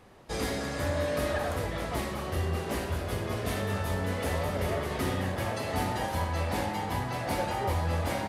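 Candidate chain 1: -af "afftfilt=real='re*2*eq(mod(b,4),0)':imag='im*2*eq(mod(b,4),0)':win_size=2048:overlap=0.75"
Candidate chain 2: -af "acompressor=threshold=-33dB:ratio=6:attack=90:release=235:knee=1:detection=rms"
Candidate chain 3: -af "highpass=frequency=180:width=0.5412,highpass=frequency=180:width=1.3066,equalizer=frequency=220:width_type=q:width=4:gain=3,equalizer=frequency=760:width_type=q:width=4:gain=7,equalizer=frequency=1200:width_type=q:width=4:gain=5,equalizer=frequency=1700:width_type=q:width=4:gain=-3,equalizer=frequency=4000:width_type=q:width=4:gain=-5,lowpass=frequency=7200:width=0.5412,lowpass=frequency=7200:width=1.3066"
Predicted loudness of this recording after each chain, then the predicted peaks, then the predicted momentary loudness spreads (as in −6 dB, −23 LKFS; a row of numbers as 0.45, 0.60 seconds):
−32.5, −35.0, −31.0 LKFS; −18.0, −20.5, −16.0 dBFS; 6, 1, 5 LU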